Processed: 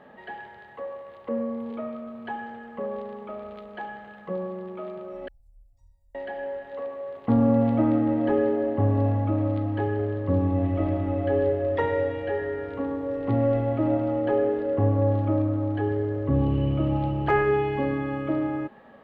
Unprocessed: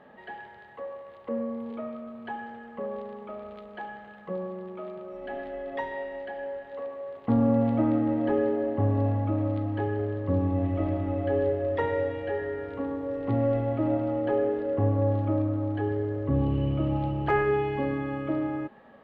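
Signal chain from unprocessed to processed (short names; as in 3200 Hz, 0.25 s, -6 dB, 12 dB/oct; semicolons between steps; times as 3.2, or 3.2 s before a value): 5.28–6.15 inverse Chebyshev band-stop 200–3400 Hz, stop band 50 dB; gain +2.5 dB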